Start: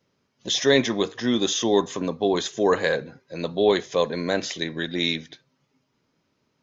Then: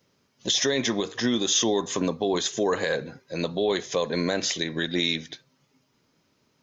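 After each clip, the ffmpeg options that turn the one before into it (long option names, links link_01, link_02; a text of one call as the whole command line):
ffmpeg -i in.wav -af "alimiter=limit=-17.5dB:level=0:latency=1:release=153,highshelf=frequency=5200:gain=7.5,volume=2.5dB" out.wav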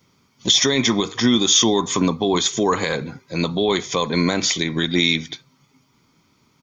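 ffmpeg -i in.wav -af "aecho=1:1:0.9:0.52,volume=6.5dB" out.wav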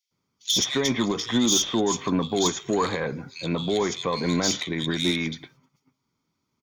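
ffmpeg -i in.wav -filter_complex "[0:a]asoftclip=type=tanh:threshold=-10dB,agate=range=-13dB:threshold=-55dB:ratio=16:detection=peak,acrossover=split=2600[link_01][link_02];[link_01]adelay=110[link_03];[link_03][link_02]amix=inputs=2:normalize=0,volume=-3.5dB" out.wav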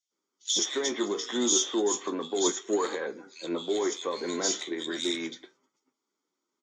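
ffmpeg -i in.wav -af "flanger=delay=8.5:depth=8:regen=58:speed=0.34:shape=triangular,highpass=frequency=300:width=0.5412,highpass=frequency=300:width=1.3066,equalizer=frequency=360:width_type=q:width=4:gain=5,equalizer=frequency=690:width_type=q:width=4:gain=-4,equalizer=frequency=1000:width_type=q:width=4:gain=-3,equalizer=frequency=2400:width_type=q:width=4:gain=-8,equalizer=frequency=4400:width_type=q:width=4:gain=-4,equalizer=frequency=7400:width_type=q:width=4:gain=9,lowpass=frequency=8100:width=0.5412,lowpass=frequency=8100:width=1.3066" -ar 44100 -c:a aac -b:a 48k out.aac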